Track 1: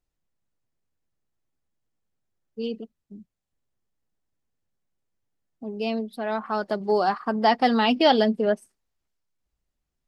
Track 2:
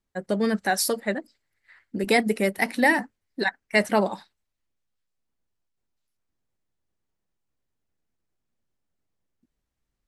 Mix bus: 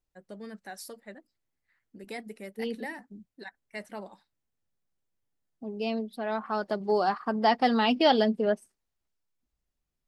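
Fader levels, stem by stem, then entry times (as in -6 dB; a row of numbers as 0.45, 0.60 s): -3.5, -19.0 dB; 0.00, 0.00 s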